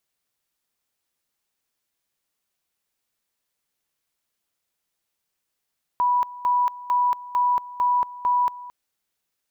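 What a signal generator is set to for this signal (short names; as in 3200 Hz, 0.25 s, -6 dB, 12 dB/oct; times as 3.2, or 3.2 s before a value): two-level tone 982 Hz -17 dBFS, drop 18 dB, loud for 0.23 s, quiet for 0.22 s, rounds 6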